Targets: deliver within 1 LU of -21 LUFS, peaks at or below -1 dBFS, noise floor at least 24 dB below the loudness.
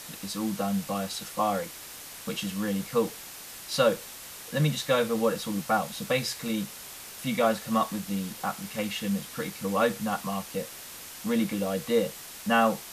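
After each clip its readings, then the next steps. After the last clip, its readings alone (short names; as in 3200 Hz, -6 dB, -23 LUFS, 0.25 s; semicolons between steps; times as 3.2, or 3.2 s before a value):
noise floor -43 dBFS; noise floor target -53 dBFS; loudness -29.0 LUFS; peak -9.5 dBFS; loudness target -21.0 LUFS
-> denoiser 10 dB, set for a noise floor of -43 dBFS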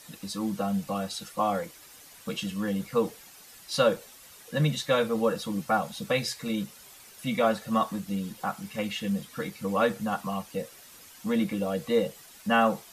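noise floor -51 dBFS; noise floor target -53 dBFS
-> denoiser 6 dB, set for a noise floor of -51 dBFS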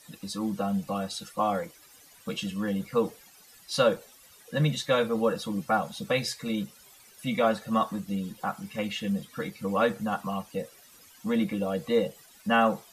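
noise floor -55 dBFS; loudness -29.0 LUFS; peak -9.5 dBFS; loudness target -21.0 LUFS
-> gain +8 dB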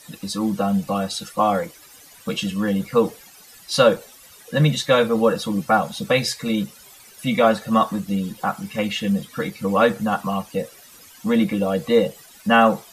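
loudness -21.0 LUFS; peak -1.5 dBFS; noise floor -47 dBFS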